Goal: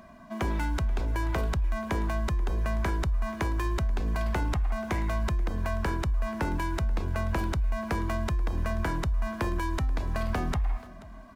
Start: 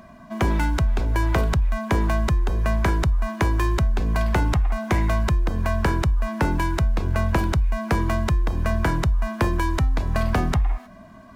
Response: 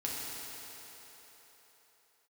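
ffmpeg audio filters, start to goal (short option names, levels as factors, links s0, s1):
-filter_complex "[0:a]equalizer=f=130:w=1.5:g=-4.5,alimiter=limit=0.133:level=0:latency=1,asplit=2[s0][s1];[s1]aecho=0:1:483:0.0944[s2];[s0][s2]amix=inputs=2:normalize=0,volume=0.631"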